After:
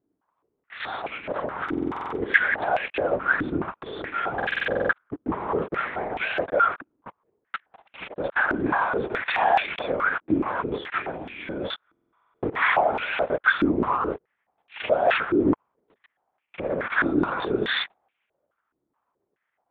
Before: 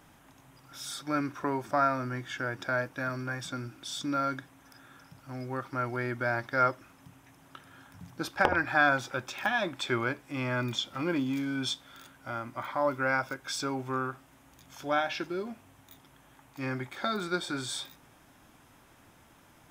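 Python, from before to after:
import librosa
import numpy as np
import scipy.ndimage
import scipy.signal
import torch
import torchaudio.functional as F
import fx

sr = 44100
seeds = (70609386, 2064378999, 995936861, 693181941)

y = fx.tilt_eq(x, sr, slope=-1.5)
y = fx.leveller(y, sr, passes=5)
y = fx.over_compress(y, sr, threshold_db=-22.0, ratio=-1.0)
y = fx.transient(y, sr, attack_db=0, sustain_db=4)
y = fx.leveller(y, sr, passes=3)
y = fx.lpc_vocoder(y, sr, seeds[0], excitation='whisper', order=8)
y = fx.buffer_glitch(y, sr, at_s=(1.64, 4.37, 11.87), block=2048, repeats=11)
y = fx.filter_held_bandpass(y, sr, hz=4.7, low_hz=310.0, high_hz=2500.0)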